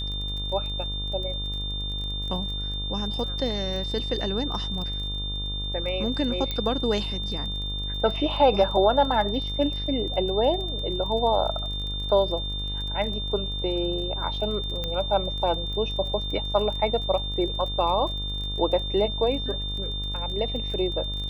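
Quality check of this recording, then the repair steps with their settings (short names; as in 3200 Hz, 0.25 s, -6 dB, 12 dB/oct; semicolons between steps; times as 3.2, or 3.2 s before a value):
buzz 50 Hz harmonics 27 -32 dBFS
crackle 22/s -33 dBFS
tone 3600 Hz -31 dBFS
6.51 pop -15 dBFS
14.84 pop -16 dBFS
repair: de-click; de-hum 50 Hz, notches 27; notch 3600 Hz, Q 30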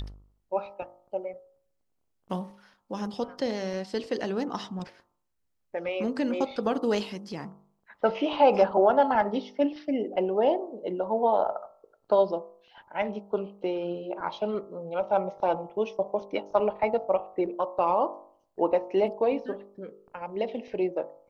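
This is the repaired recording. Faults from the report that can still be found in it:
none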